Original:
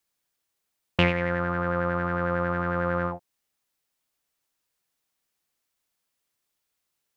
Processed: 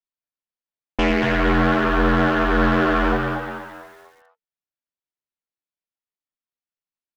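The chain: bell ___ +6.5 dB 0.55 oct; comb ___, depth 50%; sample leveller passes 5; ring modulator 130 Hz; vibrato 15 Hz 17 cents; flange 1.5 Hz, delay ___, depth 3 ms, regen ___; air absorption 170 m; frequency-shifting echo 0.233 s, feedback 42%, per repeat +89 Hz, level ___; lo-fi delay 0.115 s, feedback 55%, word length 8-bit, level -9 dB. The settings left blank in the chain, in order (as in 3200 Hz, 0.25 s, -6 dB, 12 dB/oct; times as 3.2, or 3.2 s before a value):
150 Hz, 2.5 ms, 1 ms, +78%, -6 dB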